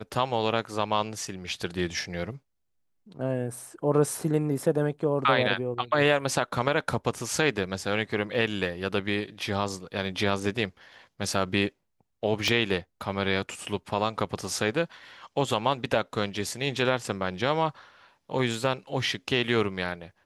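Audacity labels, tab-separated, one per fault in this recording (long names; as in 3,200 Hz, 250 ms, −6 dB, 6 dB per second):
12.480000	12.480000	click −12 dBFS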